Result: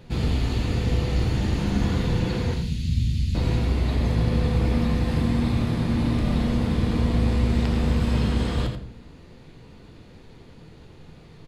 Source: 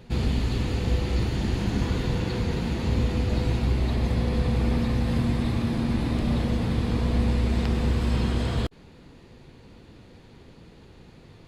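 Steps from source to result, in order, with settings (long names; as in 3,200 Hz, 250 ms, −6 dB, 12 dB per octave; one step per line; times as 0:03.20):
0:02.54–0:03.35: Chebyshev band-stop filter 150–3,600 Hz, order 2
single-tap delay 85 ms −8 dB
rectangular room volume 87 cubic metres, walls mixed, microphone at 0.38 metres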